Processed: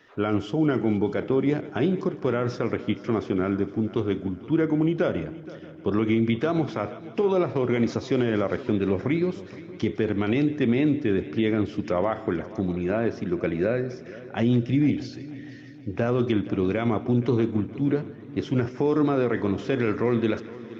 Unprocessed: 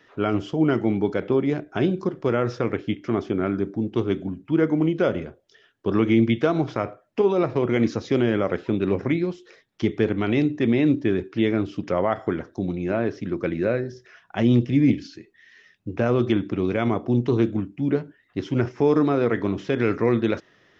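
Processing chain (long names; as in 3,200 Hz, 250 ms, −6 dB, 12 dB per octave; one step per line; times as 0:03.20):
brickwall limiter −13.5 dBFS, peak gain reduction 5.5 dB
on a send: echo machine with several playback heads 157 ms, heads first and third, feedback 60%, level −19 dB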